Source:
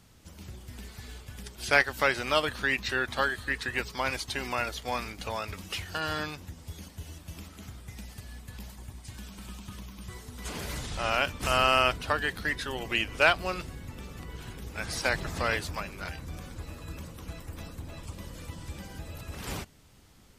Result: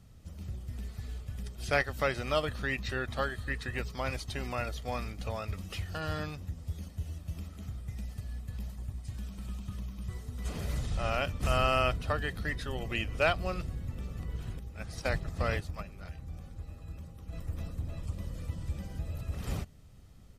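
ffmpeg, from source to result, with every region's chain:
ffmpeg -i in.wav -filter_complex "[0:a]asettb=1/sr,asplit=3[link_01][link_02][link_03];[link_01]atrim=end=14.594[link_04];[link_02]atrim=start=14.59:end=17.33,asetpts=PTS-STARTPTS,afade=type=in:duration=0.004:curve=qsin,afade=type=out:start_time=2.736:duration=0.004:curve=qsin,aeval=exprs='val(0)+0.00158*sin(2*PI*800*n/s)':channel_layout=same,agate=range=-7dB:threshold=-34dB:ratio=16:release=100:detection=peak[link_05];[link_03]atrim=start=17.326[link_06];[link_04][link_05]acrossfade=duration=0.004:curve1=hsin:curve2=qsin[link_07];[link_07][link_06]acrossfade=duration=0.004:curve1=qsin:curve2=hsin,lowshelf=frequency=410:gain=12,aecho=1:1:1.6:0.31,volume=-8dB" out.wav

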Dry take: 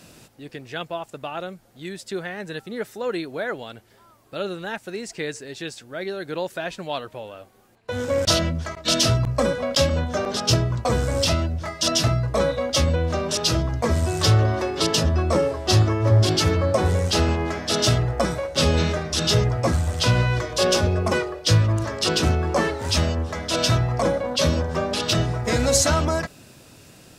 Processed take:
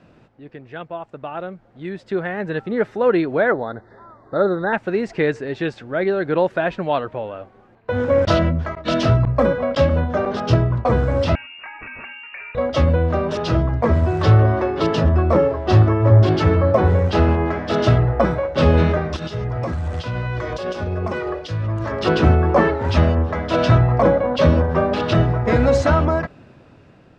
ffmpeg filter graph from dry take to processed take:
ffmpeg -i in.wav -filter_complex "[0:a]asettb=1/sr,asplit=3[link_01][link_02][link_03];[link_01]atrim=end=3.524[link_04];[link_02]atrim=start=3.52:end=4.73,asetpts=PTS-STARTPTS,afade=type=in:duration=0.004:curve=qsin,afade=type=out:start_time=1.206:duration=0.004:curve=qsin,asuperstop=centerf=2700:order=20:qfactor=1.9,bass=frequency=250:gain=-3,treble=frequency=4000:gain=-7[link_05];[link_03]atrim=start=4.726[link_06];[link_04][link_05]acrossfade=duration=0.004:curve1=hsin:curve2=qsin[link_07];[link_07][link_06]acrossfade=duration=0.004:curve1=qsin:curve2=hsin,asettb=1/sr,asplit=3[link_08][link_09][link_10];[link_08]atrim=end=11.354[link_11];[link_09]atrim=start=11.35:end=12.55,asetpts=PTS-STARTPTS,afade=type=in:duration=0.004:curve=qsin,afade=type=out:start_time=1.196:duration=0.004:curve=qsin,highpass=frequency=170:poles=1,lowpass=frequency=2500:width_type=q:width=0.5098,lowpass=frequency=2500:width_type=q:width=0.6013,lowpass=frequency=2500:width_type=q:width=0.9,lowpass=frequency=2500:width_type=q:width=2.563,afreqshift=-2900,acompressor=threshold=-32dB:ratio=6:attack=3.2:release=140:knee=1:detection=peak[link_12];[link_10]atrim=start=12.546[link_13];[link_11][link_12]acrossfade=duration=0.004:curve1=hsin:curve2=qsin[link_14];[link_14][link_13]acrossfade=duration=0.004:curve1=qsin:curve2=hsin,asettb=1/sr,asplit=3[link_15][link_16][link_17];[link_15]atrim=end=19.164[link_18];[link_16]atrim=start=19.16:end=21.92,asetpts=PTS-STARTPTS,afade=type=in:duration=0.004:curve=qsin,afade=type=out:start_time=2.756:duration=0.004:curve=qsin,highshelf=frequency=3500:gain=11.5,acompressor=threshold=-25dB:ratio=16:attack=3.2:release=140:knee=1:detection=peak[link_19];[link_17]atrim=start=21.916[link_20];[link_18][link_19]acrossfade=duration=0.004:curve1=hsin:curve2=qsin[link_21];[link_21][link_20]acrossfade=duration=0.004:curve1=qsin:curve2=hsin,lowpass=1800,dynaudnorm=framelen=890:gausssize=5:maxgain=13dB,volume=-1dB" out.wav

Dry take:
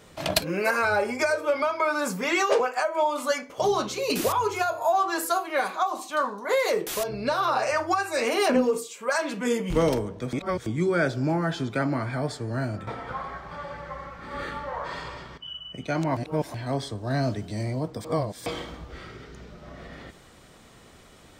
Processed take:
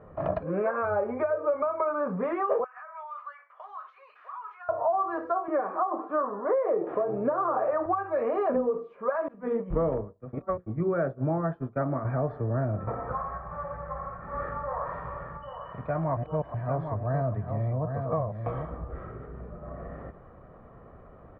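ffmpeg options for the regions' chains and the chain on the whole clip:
ffmpeg -i in.wav -filter_complex "[0:a]asettb=1/sr,asplit=3[link_01][link_02][link_03];[link_01]atrim=end=2.644[link_04];[link_02]atrim=start=2.64:end=4.69,asetpts=PTS-STARTPTS,afade=type=in:duration=0.004:curve=qsin,afade=type=out:start_time=2.046:duration=0.004:curve=qsin,highpass=frequency=1300:width=0.5412,highpass=frequency=1300:width=1.3066,acompressor=threshold=-36dB:ratio=6:attack=3.2:release=140:knee=1:detection=peak[link_05];[link_03]atrim=start=4.686[link_06];[link_04][link_05]acrossfade=duration=0.004:curve1=hsin:curve2=qsin[link_07];[link_07][link_06]acrossfade=duration=0.004:curve1=qsin:curve2=hsin,asettb=1/sr,asplit=3[link_08][link_09][link_10];[link_08]atrim=end=5.484[link_11];[link_09]atrim=start=5.48:end=7.86,asetpts=PTS-STARTPTS,afade=type=in:duration=0.004:curve=qsin,afade=type=out:start_time=2.376:duration=0.004:curve=qsin,highpass=170,lowpass=2500,equalizer=frequency=320:width_type=o:width=0.53:gain=10,asplit=5[link_12][link_13][link_14][link_15][link_16];[link_13]adelay=95,afreqshift=120,volume=-21dB[link_17];[link_14]adelay=190,afreqshift=240,volume=-26dB[link_18];[link_15]adelay=285,afreqshift=360,volume=-31.1dB[link_19];[link_16]adelay=380,afreqshift=480,volume=-36.1dB[link_20];[link_12][link_17][link_18][link_19][link_20]amix=inputs=5:normalize=0,atrim=end_sample=104958[link_21];[link_10]atrim=start=7.856[link_22];[link_11][link_21]acrossfade=duration=0.004:curve1=hsin:curve2=qsin[link_23];[link_23][link_22]acrossfade=duration=0.004:curve1=qsin:curve2=hsin,asettb=1/sr,asplit=3[link_24][link_25][link_26];[link_24]atrim=end=9.284[link_27];[link_25]atrim=start=9.28:end=12.05,asetpts=PTS-STARTPTS,afade=type=in:duration=0.004:curve=qsin,afade=type=out:start_time=2.766:duration=0.004:curve=qsin,bandreject=frequency=60:width_type=h:width=6,bandreject=frequency=120:width_type=h:width=6,bandreject=frequency=180:width_type=h:width=6,bandreject=frequency=240:width_type=h:width=6,bandreject=frequency=300:width_type=h:width=6,bandreject=frequency=360:width_type=h:width=6,bandreject=frequency=420:width_type=h:width=6,bandreject=frequency=480:width_type=h:width=6,bandreject=frequency=540:width_type=h:width=6,agate=range=-33dB:threshold=-24dB:ratio=3:release=100:detection=peak[link_28];[link_26]atrim=start=12.046[link_29];[link_27][link_28]acrossfade=duration=0.004:curve1=hsin:curve2=qsin[link_30];[link_30][link_29]acrossfade=duration=0.004:curve1=qsin:curve2=hsin,asettb=1/sr,asplit=3[link_31][link_32][link_33];[link_31]atrim=end=13.154[link_34];[link_32]atrim=start=13.15:end=18.71,asetpts=PTS-STARTPTS,afade=type=in:duration=0.004:curve=qsin,afade=type=out:start_time=5.556:duration=0.004:curve=qsin,equalizer=frequency=330:width=1:gain=-8.5,aecho=1:1:799:0.398,atrim=end_sample=245196[link_35];[link_33]atrim=start=18.706[link_36];[link_34][link_35]acrossfade=duration=0.004:curve1=hsin:curve2=qsin[link_37];[link_37][link_36]acrossfade=duration=0.004:curve1=qsin:curve2=hsin,aecho=1:1:1.7:0.35,acompressor=threshold=-26dB:ratio=4,lowpass=frequency=1300:width=0.5412,lowpass=frequency=1300:width=1.3066,volume=2.5dB" out.wav

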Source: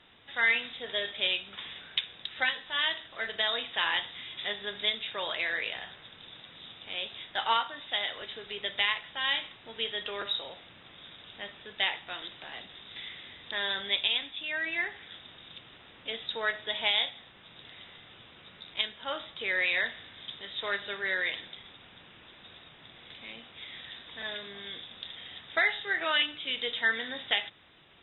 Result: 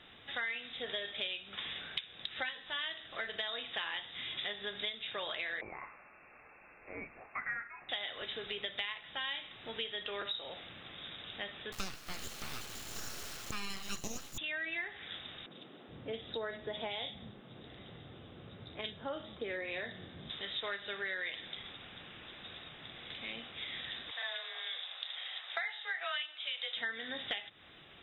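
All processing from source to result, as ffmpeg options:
ffmpeg -i in.wav -filter_complex "[0:a]asettb=1/sr,asplit=3[link_01][link_02][link_03];[link_01]atrim=end=5.614[link_04];[link_02]atrim=start=5.61:end=7.89,asetpts=PTS-STARTPTS,afade=type=in:duration=0.004:curve=qsin,afade=type=out:start_time=2.276:duration=0.004:curve=qsin,lowshelf=frequency=170:gain=-6.5,flanger=delay=1.7:depth=1.2:regen=-86:speed=1.2:shape=triangular,lowpass=frequency=2400:width_type=q:width=0.5098,lowpass=frequency=2400:width_type=q:width=0.6013,lowpass=frequency=2400:width_type=q:width=0.9,lowpass=frequency=2400:width_type=q:width=2.563,afreqshift=-2800[link_05];[link_03]atrim=start=7.886[link_06];[link_04][link_05]acrossfade=duration=0.004:curve1=hsin:curve2=qsin[link_07];[link_07][link_06]acrossfade=duration=0.004:curve1=qsin:curve2=hsin,asettb=1/sr,asplit=3[link_08][link_09][link_10];[link_08]atrim=end=11.724[link_11];[link_09]atrim=start=11.72:end=14.38,asetpts=PTS-STARTPTS,afade=type=in:duration=0.004:curve=qsin,afade=type=out:start_time=2.656:duration=0.004:curve=qsin,equalizer=frequency=590:width_type=o:width=0.39:gain=12.5,aeval=exprs='abs(val(0))':channel_layout=same,acrusher=bits=5:dc=4:mix=0:aa=0.000001[link_12];[link_10]atrim=start=14.376[link_13];[link_11][link_12]acrossfade=duration=0.004:curve1=hsin:curve2=qsin[link_14];[link_14][link_13]acrossfade=duration=0.004:curve1=qsin:curve2=hsin,asettb=1/sr,asplit=3[link_15][link_16][link_17];[link_15]atrim=end=15.464[link_18];[link_16]atrim=start=15.46:end=20.3,asetpts=PTS-STARTPTS,afade=type=in:duration=0.004:curve=qsin,afade=type=out:start_time=4.836:duration=0.004:curve=qsin,highpass=62,tiltshelf=frequency=660:gain=9.5,acrossover=split=190|2300[link_19][link_20][link_21];[link_21]adelay=50[link_22];[link_19]adelay=420[link_23];[link_23][link_20][link_22]amix=inputs=3:normalize=0,atrim=end_sample=213444[link_24];[link_17]atrim=start=20.296[link_25];[link_18][link_24]acrossfade=duration=0.004:curve1=hsin:curve2=qsin[link_26];[link_26][link_25]acrossfade=duration=0.004:curve1=qsin:curve2=hsin,asettb=1/sr,asplit=3[link_27][link_28][link_29];[link_27]atrim=end=24.114[link_30];[link_28]atrim=start=24.11:end=26.77,asetpts=PTS-STARTPTS,afade=type=in:duration=0.004:curve=qsin,afade=type=out:start_time=2.656:duration=0.004:curve=qsin,highpass=frequency=600:width=0.5412,highpass=frequency=600:width=1.3066,afreqshift=23[link_31];[link_29]atrim=start=26.766[link_32];[link_30][link_31]acrossfade=duration=0.004:curve1=hsin:curve2=qsin[link_33];[link_33][link_32]acrossfade=duration=0.004:curve1=qsin:curve2=hsin,bandreject=frequency=960:width=12,acompressor=threshold=-39dB:ratio=5,volume=2.5dB" out.wav

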